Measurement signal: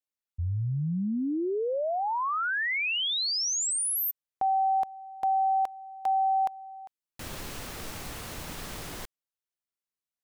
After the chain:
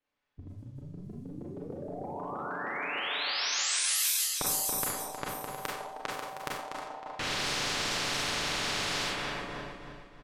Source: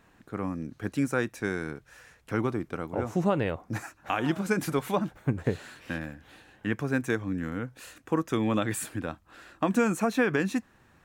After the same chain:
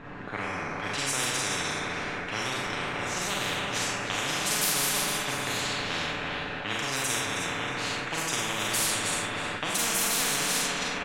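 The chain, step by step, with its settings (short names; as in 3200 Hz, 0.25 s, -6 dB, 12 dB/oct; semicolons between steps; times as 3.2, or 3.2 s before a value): regenerating reverse delay 0.157 s, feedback 63%, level -7 dB; Schroeder reverb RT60 0.57 s, combs from 30 ms, DRR -3.5 dB; low-pass opened by the level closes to 2500 Hz, open at -16.5 dBFS; dynamic EQ 140 Hz, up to +7 dB, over -39 dBFS, Q 1.6; comb 6.9 ms, depth 41%; spectral compressor 10:1; gain -8 dB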